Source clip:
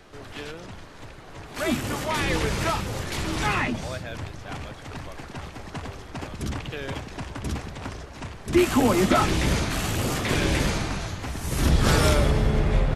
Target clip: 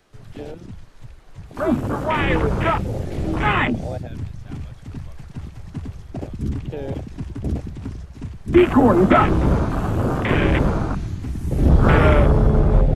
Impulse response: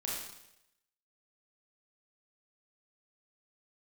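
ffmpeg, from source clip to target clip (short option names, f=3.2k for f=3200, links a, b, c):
-filter_complex "[0:a]acrossover=split=3000[a][b];[b]acompressor=threshold=-42dB:ratio=4:attack=1:release=60[c];[a][c]amix=inputs=2:normalize=0,afwtdn=0.0398,highshelf=f=6.3k:g=6.5,volume=6.5dB"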